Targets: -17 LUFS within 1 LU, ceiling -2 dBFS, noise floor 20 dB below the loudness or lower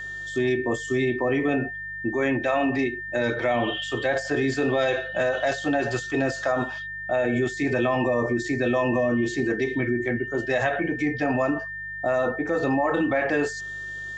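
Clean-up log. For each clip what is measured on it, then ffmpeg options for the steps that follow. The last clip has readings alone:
hum 50 Hz; highest harmonic 150 Hz; hum level -47 dBFS; steady tone 1.8 kHz; tone level -32 dBFS; loudness -25.0 LUFS; peak level -10.0 dBFS; loudness target -17.0 LUFS
-> -af "bandreject=f=50:t=h:w=4,bandreject=f=100:t=h:w=4,bandreject=f=150:t=h:w=4"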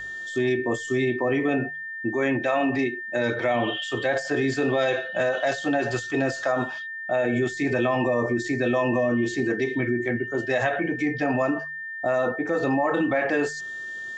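hum not found; steady tone 1.8 kHz; tone level -32 dBFS
-> -af "bandreject=f=1800:w=30"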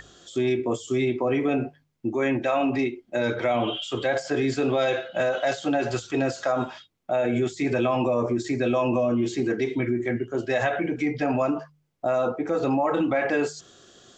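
steady tone not found; loudness -25.5 LUFS; peak level -11.5 dBFS; loudness target -17.0 LUFS
-> -af "volume=2.66"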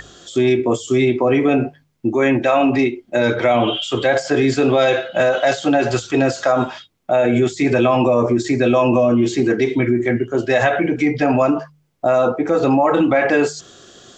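loudness -17.0 LUFS; peak level -3.0 dBFS; noise floor -57 dBFS

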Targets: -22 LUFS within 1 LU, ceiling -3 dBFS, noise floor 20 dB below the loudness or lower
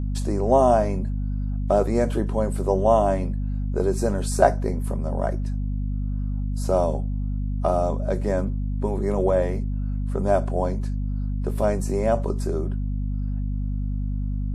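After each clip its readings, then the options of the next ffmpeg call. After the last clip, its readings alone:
hum 50 Hz; highest harmonic 250 Hz; hum level -23 dBFS; loudness -24.5 LUFS; peak level -2.0 dBFS; loudness target -22.0 LUFS
-> -af "bandreject=f=50:t=h:w=4,bandreject=f=100:t=h:w=4,bandreject=f=150:t=h:w=4,bandreject=f=200:t=h:w=4,bandreject=f=250:t=h:w=4"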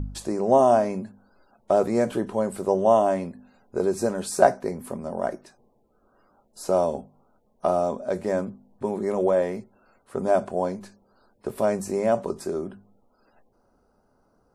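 hum not found; loudness -24.5 LUFS; peak level -2.0 dBFS; loudness target -22.0 LUFS
-> -af "volume=1.33,alimiter=limit=0.708:level=0:latency=1"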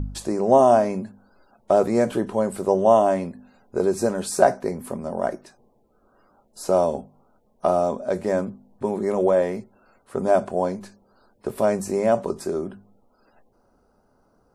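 loudness -22.0 LUFS; peak level -3.0 dBFS; noise floor -63 dBFS

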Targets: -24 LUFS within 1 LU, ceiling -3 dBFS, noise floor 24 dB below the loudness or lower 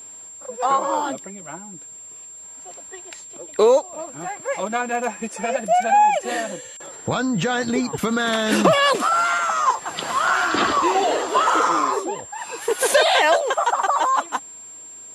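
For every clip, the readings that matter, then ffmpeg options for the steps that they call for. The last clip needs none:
steady tone 7.4 kHz; tone level -37 dBFS; loudness -20.0 LUFS; peak level -3.0 dBFS; loudness target -24.0 LUFS
-> -af "bandreject=f=7400:w=30"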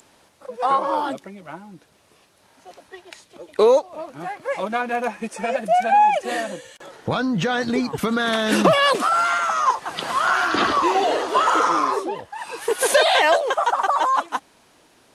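steady tone not found; loudness -20.0 LUFS; peak level -3.5 dBFS; loudness target -24.0 LUFS
-> -af "volume=0.631"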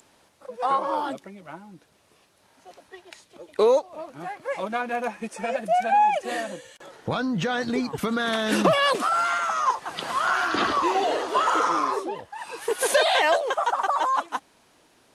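loudness -24.0 LUFS; peak level -7.5 dBFS; noise floor -61 dBFS

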